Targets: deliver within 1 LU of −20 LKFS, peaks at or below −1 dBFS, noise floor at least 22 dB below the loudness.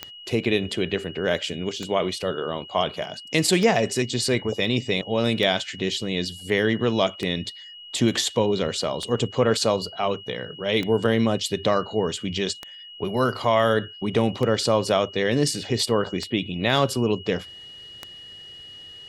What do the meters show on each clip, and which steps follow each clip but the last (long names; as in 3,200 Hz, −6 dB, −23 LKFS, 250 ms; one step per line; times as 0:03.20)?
number of clicks 11; interfering tone 2,900 Hz; level of the tone −40 dBFS; integrated loudness −24.0 LKFS; sample peak −5.5 dBFS; target loudness −20.0 LKFS
→ click removal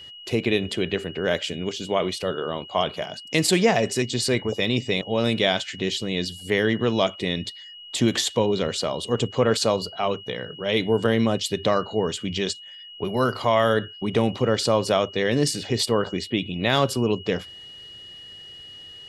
number of clicks 0; interfering tone 2,900 Hz; level of the tone −40 dBFS
→ notch filter 2,900 Hz, Q 30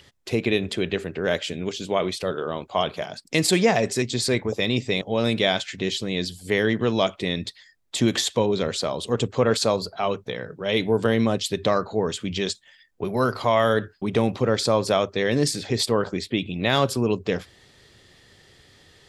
interfering tone none found; integrated loudness −24.0 LKFS; sample peak −6.0 dBFS; target loudness −20.0 LKFS
→ level +4 dB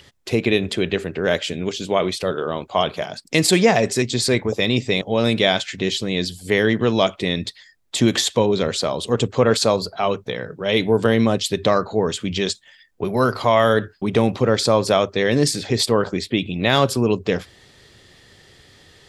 integrated loudness −20.0 LKFS; sample peak −2.0 dBFS; background noise floor −52 dBFS